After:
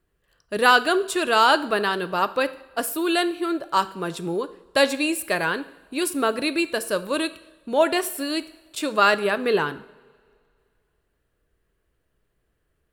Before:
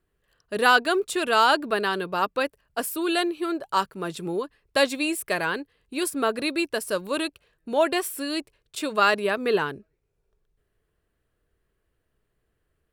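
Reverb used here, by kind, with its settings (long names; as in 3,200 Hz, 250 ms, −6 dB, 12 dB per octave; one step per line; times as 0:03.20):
coupled-rooms reverb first 0.66 s, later 2.3 s, from −18 dB, DRR 12.5 dB
level +2 dB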